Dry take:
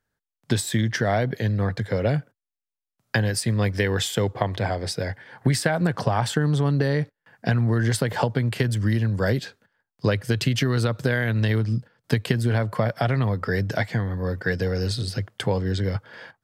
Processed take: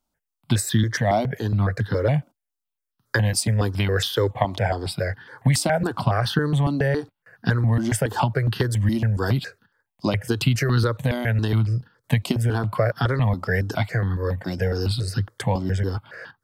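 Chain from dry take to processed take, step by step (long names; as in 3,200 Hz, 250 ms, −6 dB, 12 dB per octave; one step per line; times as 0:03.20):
step-sequenced phaser 7.2 Hz 460–2,200 Hz
level +4.5 dB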